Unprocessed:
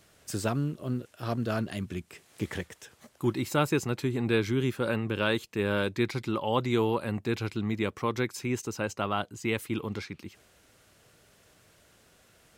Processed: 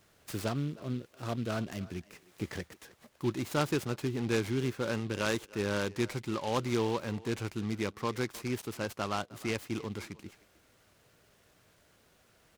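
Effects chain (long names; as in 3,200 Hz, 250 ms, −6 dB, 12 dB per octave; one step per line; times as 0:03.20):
far-end echo of a speakerphone 310 ms, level −19 dB
short delay modulated by noise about 2,800 Hz, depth 0.042 ms
level −4 dB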